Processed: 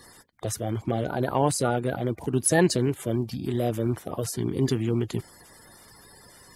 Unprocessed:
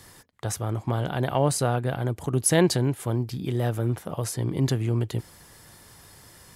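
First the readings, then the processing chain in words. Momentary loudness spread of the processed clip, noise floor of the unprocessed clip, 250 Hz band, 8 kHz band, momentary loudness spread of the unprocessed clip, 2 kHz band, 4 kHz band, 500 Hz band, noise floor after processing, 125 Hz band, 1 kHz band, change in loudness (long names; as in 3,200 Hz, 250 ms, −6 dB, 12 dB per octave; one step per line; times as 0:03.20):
9 LU, −52 dBFS, +1.0 dB, −0.5 dB, 9 LU, +1.0 dB, −2.0 dB, +1.0 dB, −52 dBFS, −3.5 dB, +1.0 dB, −0.5 dB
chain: spectral magnitudes quantised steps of 30 dB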